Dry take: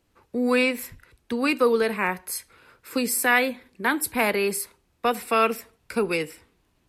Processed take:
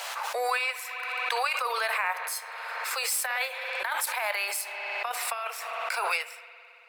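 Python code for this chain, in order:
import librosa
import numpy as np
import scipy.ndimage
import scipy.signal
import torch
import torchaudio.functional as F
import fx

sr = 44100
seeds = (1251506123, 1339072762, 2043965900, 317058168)

y = scipy.ndimage.median_filter(x, 3, mode='constant')
y = scipy.signal.sosfilt(scipy.signal.butter(8, 630.0, 'highpass', fs=sr, output='sos'), y)
y = fx.over_compress(y, sr, threshold_db=-26.0, ratio=-0.5)
y = fx.rev_spring(y, sr, rt60_s=3.4, pass_ms=(55,), chirp_ms=25, drr_db=12.5)
y = fx.pre_swell(y, sr, db_per_s=22.0)
y = y * librosa.db_to_amplitude(-2.5)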